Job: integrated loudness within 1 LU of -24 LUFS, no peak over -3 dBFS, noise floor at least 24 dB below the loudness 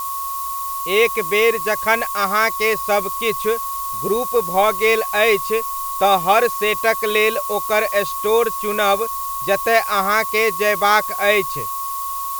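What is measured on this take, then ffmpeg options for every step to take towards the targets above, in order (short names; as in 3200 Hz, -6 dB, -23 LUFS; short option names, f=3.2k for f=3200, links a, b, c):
steady tone 1100 Hz; tone level -24 dBFS; noise floor -26 dBFS; noise floor target -42 dBFS; loudness -18.0 LUFS; peak -1.5 dBFS; loudness target -24.0 LUFS
-> -af "bandreject=f=1.1k:w=30"
-af "afftdn=nr=16:nf=-26"
-af "volume=-6dB"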